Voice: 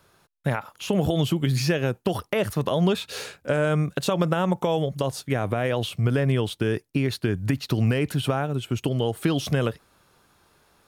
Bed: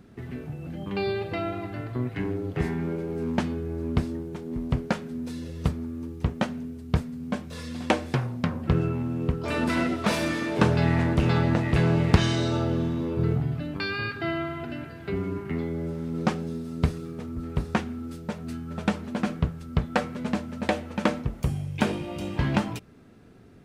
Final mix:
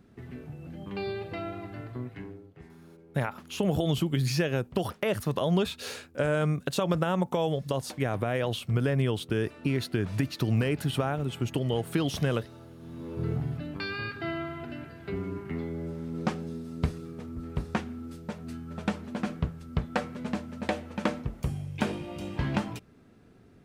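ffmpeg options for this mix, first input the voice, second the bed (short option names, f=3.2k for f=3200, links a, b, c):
-filter_complex "[0:a]adelay=2700,volume=-4dB[a];[1:a]volume=12.5dB,afade=t=out:st=1.86:d=0.64:silence=0.141254,afade=t=in:st=12.79:d=0.6:silence=0.11885[b];[a][b]amix=inputs=2:normalize=0"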